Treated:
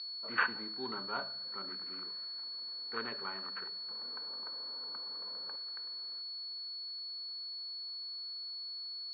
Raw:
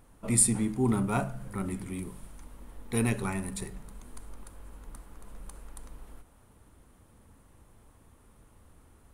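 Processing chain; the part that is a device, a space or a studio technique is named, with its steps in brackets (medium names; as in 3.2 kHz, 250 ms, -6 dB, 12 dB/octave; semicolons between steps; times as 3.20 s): toy sound module (decimation joined by straight lines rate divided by 8×; class-D stage that switches slowly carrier 4.4 kHz; cabinet simulation 600–4000 Hz, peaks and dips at 740 Hz -8 dB, 1.5 kHz +5 dB, 3.6 kHz +3 dB); 3.89–5.56 s: graphic EQ 125/250/500/1000 Hz +10/+7/+8/+7 dB; trim -3.5 dB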